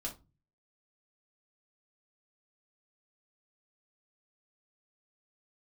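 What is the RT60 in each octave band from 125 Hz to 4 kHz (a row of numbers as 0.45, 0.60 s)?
0.70, 0.45, 0.30, 0.25, 0.20, 0.20 s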